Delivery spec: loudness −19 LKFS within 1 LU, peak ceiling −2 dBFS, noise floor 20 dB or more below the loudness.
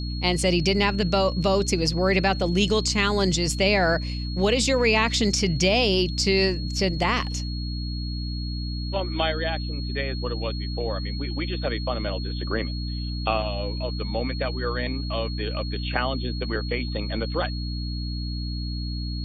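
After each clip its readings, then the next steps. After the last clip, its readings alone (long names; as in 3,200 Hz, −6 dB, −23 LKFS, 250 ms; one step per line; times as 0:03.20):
mains hum 60 Hz; hum harmonics up to 300 Hz; level of the hum −27 dBFS; interfering tone 4,300 Hz; level of the tone −37 dBFS; integrated loudness −25.0 LKFS; sample peak −5.5 dBFS; target loudness −19.0 LKFS
→ mains-hum notches 60/120/180/240/300 Hz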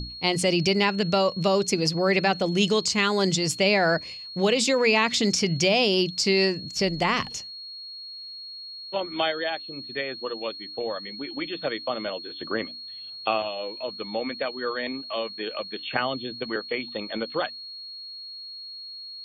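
mains hum none found; interfering tone 4,300 Hz; level of the tone −37 dBFS
→ notch filter 4,300 Hz, Q 30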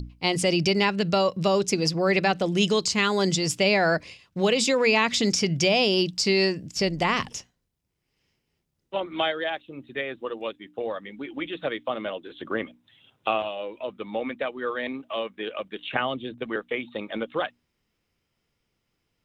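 interfering tone none found; integrated loudness −25.5 LKFS; sample peak −6.5 dBFS; target loudness −19.0 LKFS
→ level +6.5 dB
brickwall limiter −2 dBFS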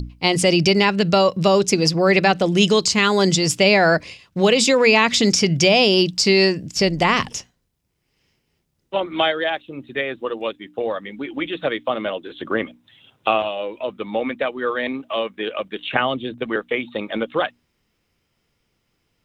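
integrated loudness −19.0 LKFS; sample peak −2.0 dBFS; background noise floor −71 dBFS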